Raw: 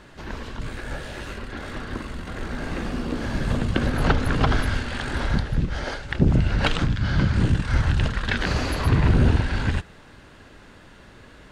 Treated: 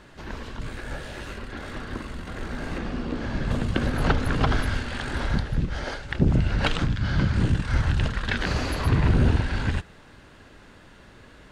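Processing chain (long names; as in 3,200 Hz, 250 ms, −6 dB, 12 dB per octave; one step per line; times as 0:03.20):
0:02.78–0:03.51: high-frequency loss of the air 71 metres
level −2 dB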